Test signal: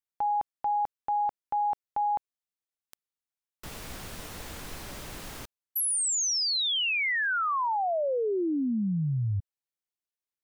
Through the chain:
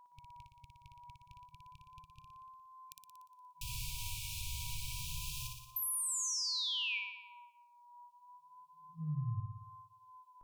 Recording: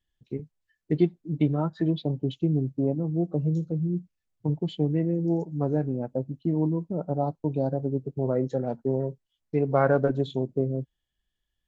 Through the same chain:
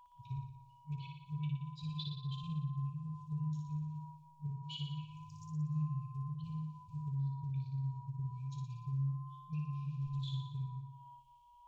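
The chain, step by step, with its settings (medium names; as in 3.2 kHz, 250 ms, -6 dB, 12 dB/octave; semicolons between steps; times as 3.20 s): FFT band-reject 160–2300 Hz; compression 6:1, threshold -41 dBFS; whistle 1 kHz -60 dBFS; wow and flutter 0.31 Hz 65 cents; flutter echo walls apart 10.1 m, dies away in 0.87 s; trim +2 dB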